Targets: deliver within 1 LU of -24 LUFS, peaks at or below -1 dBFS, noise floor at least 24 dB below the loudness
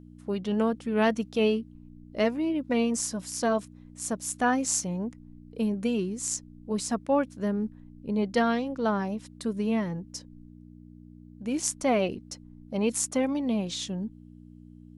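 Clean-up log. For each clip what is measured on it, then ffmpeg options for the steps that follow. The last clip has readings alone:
hum 60 Hz; harmonics up to 300 Hz; hum level -46 dBFS; loudness -28.5 LUFS; peak -9.0 dBFS; loudness target -24.0 LUFS
-> -af "bandreject=f=60:t=h:w=4,bandreject=f=120:t=h:w=4,bandreject=f=180:t=h:w=4,bandreject=f=240:t=h:w=4,bandreject=f=300:t=h:w=4"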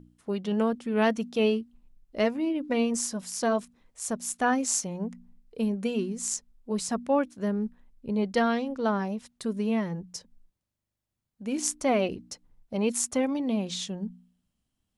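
hum none; loudness -29.0 LUFS; peak -9.0 dBFS; loudness target -24.0 LUFS
-> -af "volume=5dB"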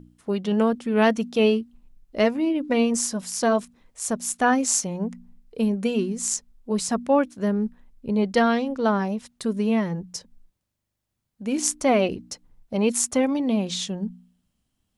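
loudness -24.0 LUFS; peak -4.0 dBFS; noise floor -79 dBFS

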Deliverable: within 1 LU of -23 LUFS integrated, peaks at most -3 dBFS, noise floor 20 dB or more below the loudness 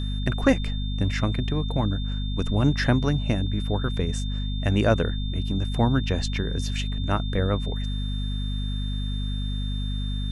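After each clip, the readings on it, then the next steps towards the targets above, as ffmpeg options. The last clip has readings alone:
hum 50 Hz; harmonics up to 250 Hz; hum level -25 dBFS; steady tone 3600 Hz; tone level -38 dBFS; loudness -26.0 LUFS; peak -5.0 dBFS; loudness target -23.0 LUFS
-> -af "bandreject=f=50:t=h:w=6,bandreject=f=100:t=h:w=6,bandreject=f=150:t=h:w=6,bandreject=f=200:t=h:w=6,bandreject=f=250:t=h:w=6"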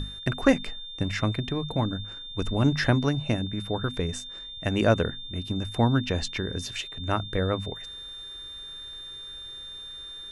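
hum none; steady tone 3600 Hz; tone level -38 dBFS
-> -af "bandreject=f=3.6k:w=30"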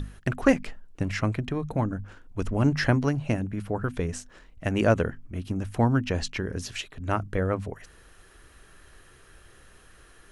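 steady tone none; loudness -28.0 LUFS; peak -6.5 dBFS; loudness target -23.0 LUFS
-> -af "volume=5dB,alimiter=limit=-3dB:level=0:latency=1"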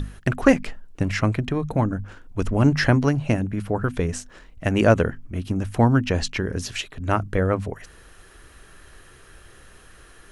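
loudness -23.0 LUFS; peak -3.0 dBFS; noise floor -49 dBFS

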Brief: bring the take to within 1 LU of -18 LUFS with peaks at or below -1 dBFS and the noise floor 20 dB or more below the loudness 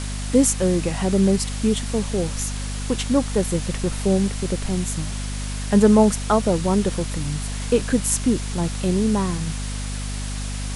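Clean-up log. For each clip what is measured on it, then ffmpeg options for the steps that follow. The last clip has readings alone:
hum 50 Hz; harmonics up to 250 Hz; hum level -26 dBFS; noise floor -28 dBFS; noise floor target -42 dBFS; loudness -22.0 LUFS; peak -3.5 dBFS; loudness target -18.0 LUFS
-> -af "bandreject=f=50:t=h:w=6,bandreject=f=100:t=h:w=6,bandreject=f=150:t=h:w=6,bandreject=f=200:t=h:w=6,bandreject=f=250:t=h:w=6"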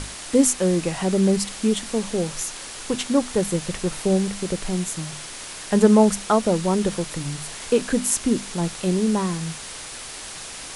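hum none; noise floor -36 dBFS; noise floor target -42 dBFS
-> -af "afftdn=nr=6:nf=-36"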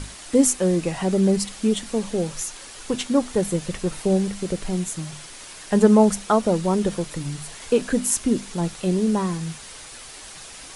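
noise floor -41 dBFS; noise floor target -43 dBFS
-> -af "afftdn=nr=6:nf=-41"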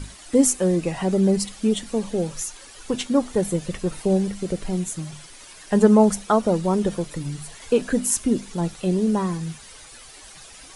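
noise floor -45 dBFS; loudness -22.5 LUFS; peak -4.0 dBFS; loudness target -18.0 LUFS
-> -af "volume=4.5dB,alimiter=limit=-1dB:level=0:latency=1"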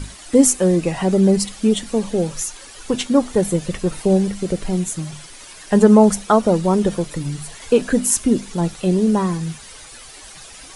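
loudness -18.0 LUFS; peak -1.0 dBFS; noise floor -40 dBFS

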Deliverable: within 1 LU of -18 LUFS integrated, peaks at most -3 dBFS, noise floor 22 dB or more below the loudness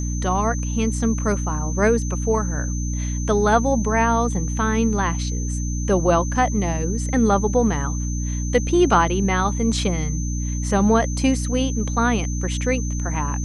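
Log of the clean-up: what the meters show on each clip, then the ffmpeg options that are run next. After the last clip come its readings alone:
hum 60 Hz; harmonics up to 300 Hz; hum level -22 dBFS; steady tone 6200 Hz; tone level -33 dBFS; loudness -21.0 LUFS; peak -4.0 dBFS; loudness target -18.0 LUFS
-> -af "bandreject=f=60:t=h:w=6,bandreject=f=120:t=h:w=6,bandreject=f=180:t=h:w=6,bandreject=f=240:t=h:w=6,bandreject=f=300:t=h:w=6"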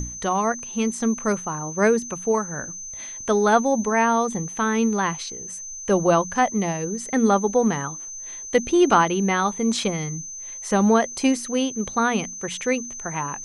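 hum none; steady tone 6200 Hz; tone level -33 dBFS
-> -af "bandreject=f=6.2k:w=30"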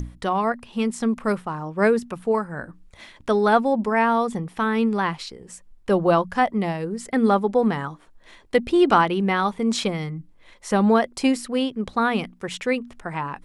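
steady tone none; loudness -22.5 LUFS; peak -4.5 dBFS; loudness target -18.0 LUFS
-> -af "volume=4.5dB,alimiter=limit=-3dB:level=0:latency=1"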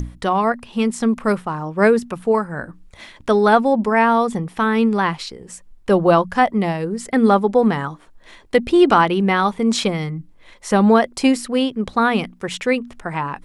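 loudness -18.0 LUFS; peak -3.0 dBFS; noise floor -48 dBFS

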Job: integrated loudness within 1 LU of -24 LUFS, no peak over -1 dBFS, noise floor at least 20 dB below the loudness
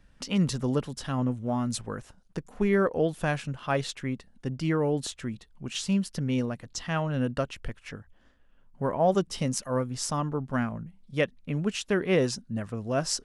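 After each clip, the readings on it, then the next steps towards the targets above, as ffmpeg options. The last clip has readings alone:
loudness -29.5 LUFS; peak -10.0 dBFS; loudness target -24.0 LUFS
-> -af "volume=5.5dB"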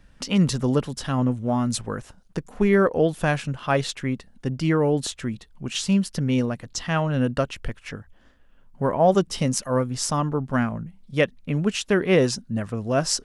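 loudness -24.0 LUFS; peak -4.5 dBFS; noise floor -55 dBFS

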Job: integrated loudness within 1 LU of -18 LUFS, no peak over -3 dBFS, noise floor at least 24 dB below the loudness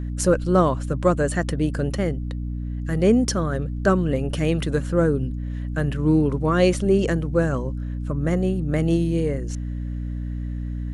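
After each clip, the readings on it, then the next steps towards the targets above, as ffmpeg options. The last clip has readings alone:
hum 60 Hz; harmonics up to 300 Hz; hum level -26 dBFS; loudness -23.0 LUFS; peak -5.5 dBFS; loudness target -18.0 LUFS
-> -af "bandreject=f=60:t=h:w=4,bandreject=f=120:t=h:w=4,bandreject=f=180:t=h:w=4,bandreject=f=240:t=h:w=4,bandreject=f=300:t=h:w=4"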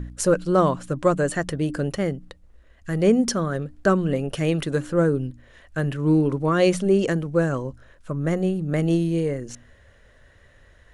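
hum none; loudness -23.0 LUFS; peak -6.5 dBFS; loudness target -18.0 LUFS
-> -af "volume=5dB,alimiter=limit=-3dB:level=0:latency=1"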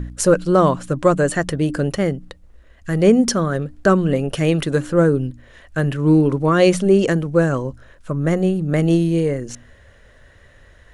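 loudness -18.0 LUFS; peak -3.0 dBFS; noise floor -49 dBFS

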